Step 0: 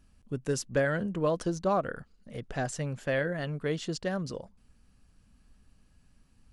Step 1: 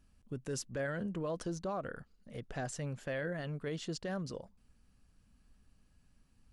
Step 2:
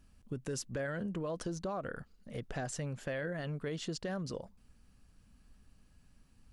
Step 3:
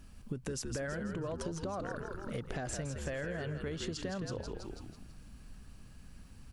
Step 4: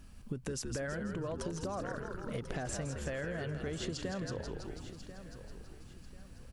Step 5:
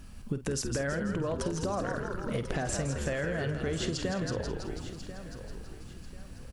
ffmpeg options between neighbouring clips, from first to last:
-af "alimiter=level_in=1.06:limit=0.0631:level=0:latency=1:release=21,volume=0.944,volume=0.562"
-af "acompressor=threshold=0.0112:ratio=3,volume=1.58"
-filter_complex "[0:a]asplit=7[s0][s1][s2][s3][s4][s5][s6];[s1]adelay=164,afreqshift=-70,volume=0.473[s7];[s2]adelay=328,afreqshift=-140,volume=0.221[s8];[s3]adelay=492,afreqshift=-210,volume=0.105[s9];[s4]adelay=656,afreqshift=-280,volume=0.049[s10];[s5]adelay=820,afreqshift=-350,volume=0.0232[s11];[s6]adelay=984,afreqshift=-420,volume=0.0108[s12];[s0][s7][s8][s9][s10][s11][s12]amix=inputs=7:normalize=0,acompressor=threshold=0.00562:ratio=5,volume=2.82"
-af "aecho=1:1:1041|2082|3123:0.224|0.0694|0.0215"
-filter_complex "[0:a]asplit=2[s0][s1];[s1]adelay=50,volume=0.251[s2];[s0][s2]amix=inputs=2:normalize=0,volume=2"

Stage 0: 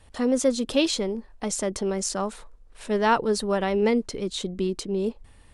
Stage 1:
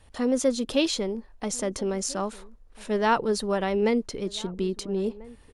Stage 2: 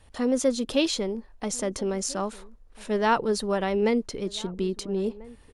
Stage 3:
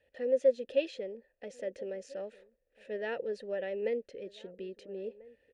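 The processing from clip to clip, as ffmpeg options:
-filter_complex "[0:a]bandreject=f=8000:w=15,asplit=2[s0][s1];[s1]adelay=1341,volume=0.0891,highshelf=f=4000:g=-30.2[s2];[s0][s2]amix=inputs=2:normalize=0,volume=0.841"
-af anull
-filter_complex "[0:a]asplit=3[s0][s1][s2];[s0]bandpass=f=530:t=q:w=8,volume=1[s3];[s1]bandpass=f=1840:t=q:w=8,volume=0.501[s4];[s2]bandpass=f=2480:t=q:w=8,volume=0.355[s5];[s3][s4][s5]amix=inputs=3:normalize=0,lowshelf=f=130:g=10"

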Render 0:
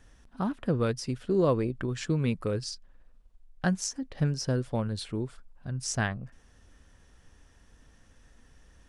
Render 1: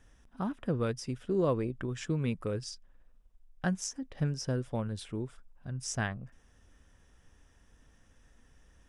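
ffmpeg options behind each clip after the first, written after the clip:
-af "bandreject=f=4300:w=6.2,volume=0.631"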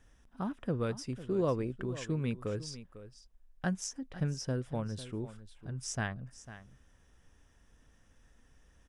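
-af "aecho=1:1:499:0.188,volume=0.794"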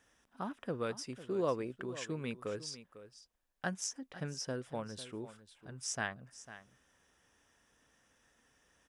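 -af "highpass=f=470:p=1,volume=1.12"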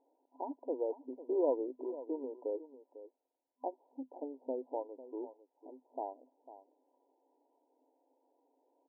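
-af "afftfilt=real='re*between(b*sr/4096,250,1000)':imag='im*between(b*sr/4096,250,1000)':win_size=4096:overlap=0.75,volume=1.41"

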